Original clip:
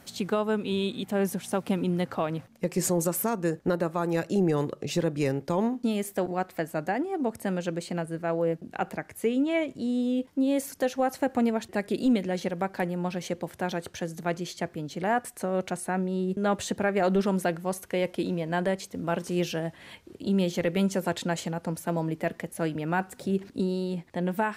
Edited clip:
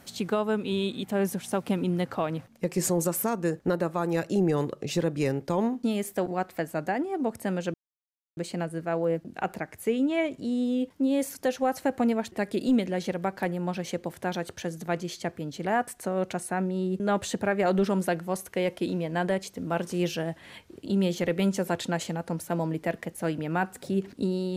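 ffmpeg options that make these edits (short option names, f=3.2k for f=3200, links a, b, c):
-filter_complex "[0:a]asplit=2[a][b];[a]atrim=end=7.74,asetpts=PTS-STARTPTS,afade=t=out:st=7.736:d=0.004:c=hsin,apad=pad_dur=0.63[c];[b]atrim=start=7.74,asetpts=PTS-STARTPTS,afade=t=in:d=0.004:c=hsin[d];[c][d]concat=n=2:v=0:a=1"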